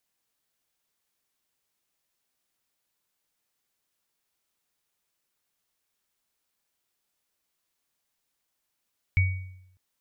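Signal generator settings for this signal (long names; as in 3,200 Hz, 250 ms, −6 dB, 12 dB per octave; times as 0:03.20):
inharmonic partials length 0.60 s, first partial 92.3 Hz, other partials 2,250 Hz, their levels −6.5 dB, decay 0.80 s, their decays 0.57 s, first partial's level −16.5 dB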